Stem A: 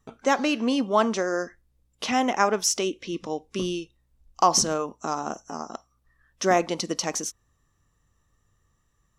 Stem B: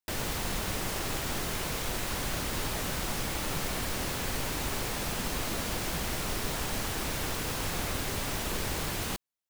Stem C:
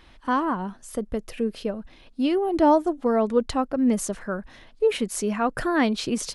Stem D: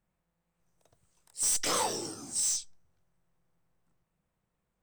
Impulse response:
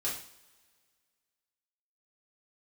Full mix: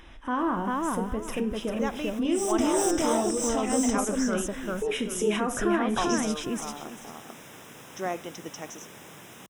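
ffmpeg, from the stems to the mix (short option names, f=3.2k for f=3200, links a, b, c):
-filter_complex "[0:a]lowpass=6.5k,adelay=1550,volume=-10.5dB[a];[1:a]highpass=f=130:w=0.5412,highpass=f=130:w=1.3066,adelay=300,volume=-11.5dB[b];[2:a]alimiter=limit=-20dB:level=0:latency=1,volume=1dB,asplit=4[c][d][e][f];[d]volume=-11dB[g];[e]volume=-3dB[h];[3:a]adelay=950,volume=2.5dB,asplit=3[i][j][k];[j]volume=-22.5dB[l];[k]volume=-4.5dB[m];[f]apad=whole_len=431928[n];[b][n]sidechaincompress=threshold=-37dB:ratio=8:attack=37:release=405[o];[o][c][i]amix=inputs=3:normalize=0,acompressor=mode=upward:threshold=-55dB:ratio=2.5,alimiter=level_in=0.5dB:limit=-24dB:level=0:latency=1,volume=-0.5dB,volume=0dB[p];[4:a]atrim=start_sample=2205[q];[g][l]amix=inputs=2:normalize=0[r];[r][q]afir=irnorm=-1:irlink=0[s];[h][m]amix=inputs=2:normalize=0,aecho=0:1:394|788|1182|1576:1|0.23|0.0529|0.0122[t];[a][p][s][t]amix=inputs=4:normalize=0,asuperstop=centerf=4400:order=4:qfactor=3.2,highshelf=f=10k:g=-4.5"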